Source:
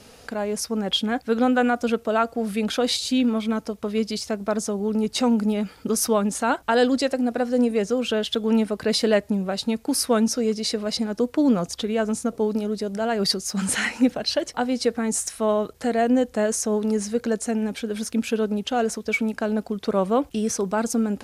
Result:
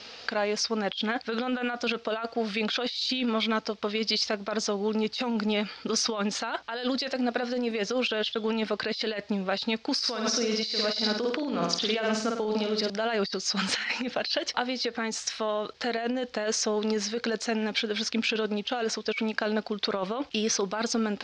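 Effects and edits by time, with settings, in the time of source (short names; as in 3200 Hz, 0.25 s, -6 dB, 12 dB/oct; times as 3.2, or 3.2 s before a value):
9.98–12.9 flutter echo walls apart 8.8 m, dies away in 0.58 s
14.18–15.98 compressor, threshold -24 dBFS
whole clip: steep low-pass 4900 Hz 36 dB/oct; tilt +4 dB/oct; negative-ratio compressor -28 dBFS, ratio -1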